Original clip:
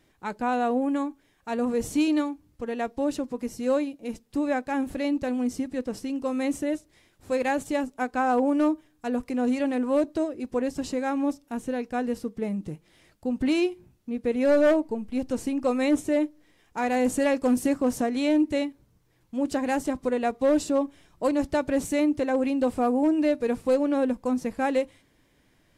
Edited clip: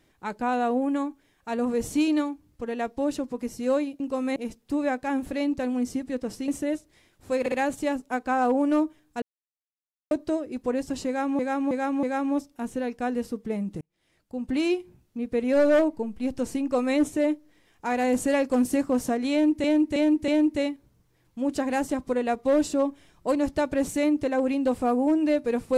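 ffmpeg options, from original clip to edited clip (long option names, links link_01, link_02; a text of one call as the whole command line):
ffmpeg -i in.wav -filter_complex "[0:a]asplit=15[link_01][link_02][link_03][link_04][link_05][link_06][link_07][link_08][link_09][link_10][link_11][link_12][link_13][link_14][link_15];[link_01]atrim=end=4.002[link_16];[link_02]atrim=start=6.118:end=6.482[link_17];[link_03]atrim=start=3.998:end=6.122[link_18];[link_04]atrim=start=6.478:end=7.462[link_19];[link_05]atrim=start=7.398:end=7.462[link_20];[link_06]atrim=start=7.398:end=9.1,asetpts=PTS-STARTPTS,afade=type=out:start_time=1.698:duration=0.004:curve=hsin[link_21];[link_07]atrim=start=9.1:end=9.99,asetpts=PTS-STARTPTS,volume=0[link_22];[link_08]atrim=start=9.99:end=11.272,asetpts=PTS-STARTPTS,afade=type=in:duration=0.004:curve=hsin[link_23];[link_09]atrim=start=10.948:end=11.272[link_24];[link_10]atrim=start=10.948:end=11.272[link_25];[link_11]atrim=start=10.948:end=12.73,asetpts=PTS-STARTPTS,afade=type=out:start_time=1.778:duration=0.004:curve=hsin[link_26];[link_12]atrim=start=12.73:end=18.562,asetpts=PTS-STARTPTS,afade=type=in:duration=0.95[link_27];[link_13]atrim=start=18.238:end=18.562[link_28];[link_14]atrim=start=18.238:end=18.562[link_29];[link_15]atrim=start=18.238[link_30];[link_16][link_17]acrossfade=duration=0.004:curve1=hsin:curve2=hsin[link_31];[link_31][link_18]acrossfade=duration=0.004:curve1=hsin:curve2=hsin[link_32];[link_32][link_19]acrossfade=duration=0.004:curve1=hsin:curve2=hsin[link_33];[link_33][link_20]acrossfade=duration=0.004:curve1=hsin:curve2=hsin[link_34];[link_21][link_22][link_23]concat=n=3:v=0:a=1[link_35];[link_34][link_35]acrossfade=duration=0.004:curve1=hsin:curve2=hsin[link_36];[link_36][link_24]acrossfade=duration=0.004:curve1=hsin:curve2=hsin[link_37];[link_37][link_25]acrossfade=duration=0.004:curve1=hsin:curve2=hsin[link_38];[link_26][link_27]concat=n=2:v=0:a=1[link_39];[link_38][link_39]acrossfade=duration=0.004:curve1=hsin:curve2=hsin[link_40];[link_40][link_28]acrossfade=duration=0.004:curve1=hsin:curve2=hsin[link_41];[link_41][link_29]acrossfade=duration=0.004:curve1=hsin:curve2=hsin[link_42];[link_42][link_30]acrossfade=duration=0.004:curve1=hsin:curve2=hsin" out.wav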